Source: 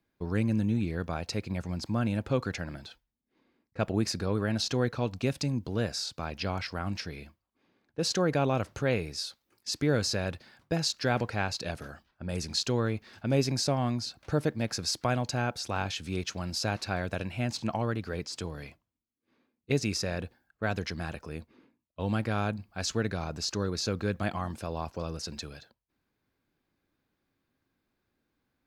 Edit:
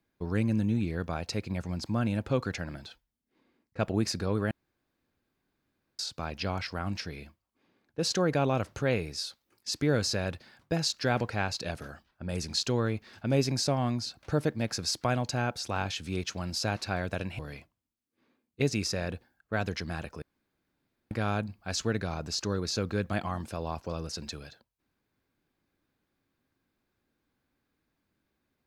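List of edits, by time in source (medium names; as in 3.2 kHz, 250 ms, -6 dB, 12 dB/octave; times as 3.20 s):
4.51–5.99 s: room tone
17.39–18.49 s: delete
21.32–22.21 s: room tone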